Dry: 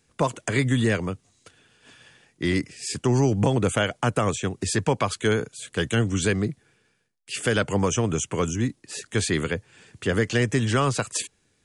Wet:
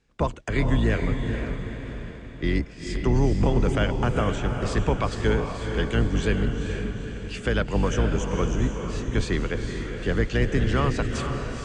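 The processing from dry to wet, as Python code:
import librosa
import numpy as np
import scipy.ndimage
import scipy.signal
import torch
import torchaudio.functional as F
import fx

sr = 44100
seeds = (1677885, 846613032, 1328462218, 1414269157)

y = fx.octave_divider(x, sr, octaves=2, level_db=2.0)
y = fx.air_absorb(y, sr, metres=120.0)
y = fx.echo_diffused(y, sr, ms=460, feedback_pct=51, wet_db=-5.5)
y = y * 10.0 ** (-2.5 / 20.0)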